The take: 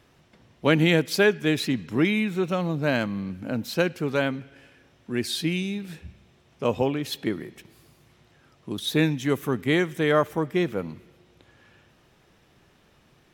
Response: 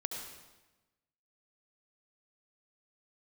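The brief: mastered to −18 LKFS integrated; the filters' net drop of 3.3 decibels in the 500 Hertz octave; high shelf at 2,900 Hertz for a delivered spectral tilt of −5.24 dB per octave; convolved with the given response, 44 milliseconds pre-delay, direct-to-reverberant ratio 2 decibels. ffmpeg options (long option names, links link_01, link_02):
-filter_complex "[0:a]equalizer=frequency=500:width_type=o:gain=-4,highshelf=frequency=2900:gain=-7,asplit=2[link_01][link_02];[1:a]atrim=start_sample=2205,adelay=44[link_03];[link_02][link_03]afir=irnorm=-1:irlink=0,volume=-3dB[link_04];[link_01][link_04]amix=inputs=2:normalize=0,volume=7dB"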